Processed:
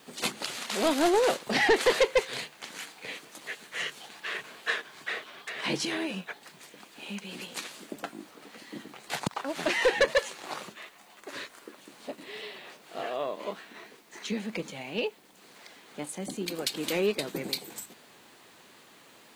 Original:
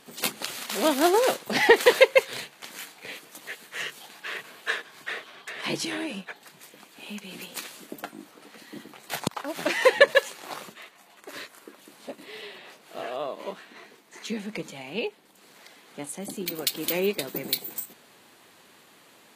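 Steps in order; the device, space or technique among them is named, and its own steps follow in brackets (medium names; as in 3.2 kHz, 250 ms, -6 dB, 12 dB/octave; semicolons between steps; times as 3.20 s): compact cassette (saturation -16.5 dBFS, distortion -8 dB; low-pass 9.1 kHz 12 dB/octave; wow and flutter; white noise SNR 33 dB)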